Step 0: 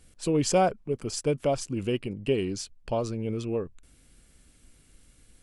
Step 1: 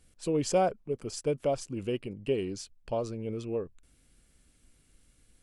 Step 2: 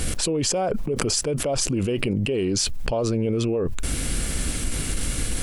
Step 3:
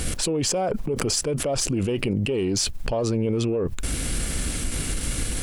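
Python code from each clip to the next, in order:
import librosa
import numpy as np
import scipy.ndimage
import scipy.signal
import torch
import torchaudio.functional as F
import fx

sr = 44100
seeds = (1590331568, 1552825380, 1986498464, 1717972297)

y1 = fx.dynamic_eq(x, sr, hz=510.0, q=1.2, threshold_db=-36.0, ratio=4.0, max_db=4)
y1 = y1 * 10.0 ** (-6.0 / 20.0)
y2 = fx.env_flatten(y1, sr, amount_pct=100)
y2 = y2 * 10.0 ** (-1.5 / 20.0)
y3 = fx.diode_clip(y2, sr, knee_db=-8.5)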